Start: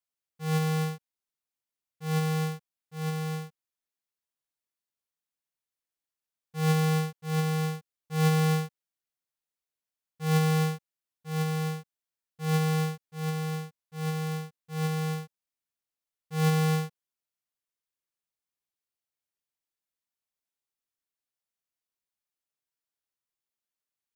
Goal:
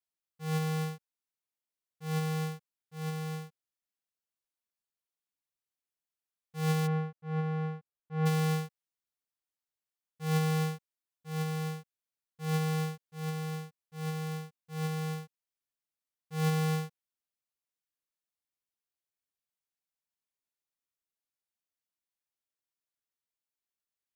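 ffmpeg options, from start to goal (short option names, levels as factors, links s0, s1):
-filter_complex "[0:a]asplit=3[s0][s1][s2];[s0]afade=t=out:st=6.86:d=0.02[s3];[s1]lowpass=1700,afade=t=in:st=6.86:d=0.02,afade=t=out:st=8.25:d=0.02[s4];[s2]afade=t=in:st=8.25:d=0.02[s5];[s3][s4][s5]amix=inputs=3:normalize=0,volume=0.596"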